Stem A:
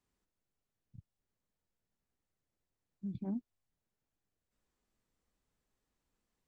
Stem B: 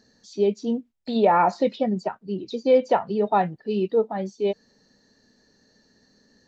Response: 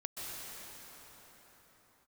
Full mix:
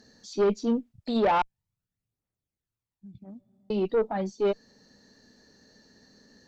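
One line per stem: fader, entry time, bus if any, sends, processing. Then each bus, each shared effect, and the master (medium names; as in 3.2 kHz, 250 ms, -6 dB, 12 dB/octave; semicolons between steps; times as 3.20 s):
-2.0 dB, 0.00 s, send -17.5 dB, phaser 0.44 Hz, delay 1.8 ms, feedback 51%
+1.0 dB, 0.00 s, muted 1.42–3.70 s, no send, none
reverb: on, pre-delay 118 ms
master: gain riding within 4 dB 2 s; valve stage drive 18 dB, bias 0.3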